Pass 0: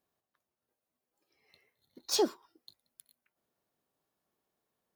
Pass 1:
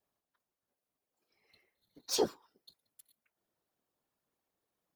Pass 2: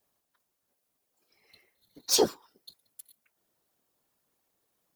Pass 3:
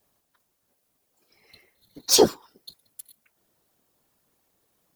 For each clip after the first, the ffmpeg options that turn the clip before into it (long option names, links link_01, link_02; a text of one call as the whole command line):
ffmpeg -i in.wav -af "afftfilt=real='hypot(re,im)*cos(2*PI*random(0))':imag='hypot(re,im)*sin(2*PI*random(1))':win_size=512:overlap=0.75,volume=3.5dB" out.wav
ffmpeg -i in.wav -af "highshelf=frequency=4800:gain=6.5,volume=6dB" out.wav
ffmpeg -i in.wav -af "lowshelf=frequency=240:gain=5,volume=6dB" out.wav